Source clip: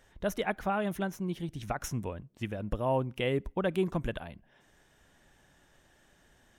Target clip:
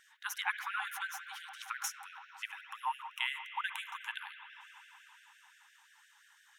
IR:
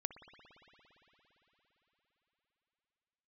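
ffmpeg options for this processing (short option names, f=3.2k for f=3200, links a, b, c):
-filter_complex "[0:a]asettb=1/sr,asplit=3[a][b][c];[a]atrim=end=2.534[d];[b]atrim=start=2.53:end=4.01,asetpts=PTS-STARTPTS,afade=t=in:d=0.004:c=qsin,afade=t=out:st=1.476:d=0.004:c=qsin,asuperstop=centerf=4600:order=4:qfactor=3.6[e];[c]atrim=start=4.006[f];[d][e]acrossfade=d=0.004:c1=hsin:c2=qsin[g];[g][f]acrossfade=d=0.004:c1=qsin:c2=hsin[h];[1:a]atrim=start_sample=2205[i];[h][i]afir=irnorm=-1:irlink=0,afftfilt=real='re*gte(b*sr/1024,750*pow(1500/750,0.5+0.5*sin(2*PI*5.8*pts/sr)))':imag='im*gte(b*sr/1024,750*pow(1500/750,0.5+0.5*sin(2*PI*5.8*pts/sr)))':win_size=1024:overlap=0.75,volume=5dB"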